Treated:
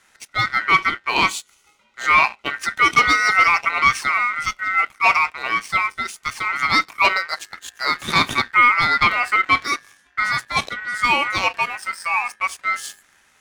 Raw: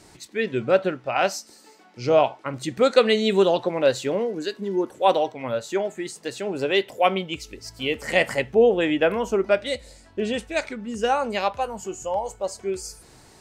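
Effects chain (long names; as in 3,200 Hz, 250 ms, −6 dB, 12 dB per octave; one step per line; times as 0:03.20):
leveller curve on the samples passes 2
ring modulation 1,700 Hz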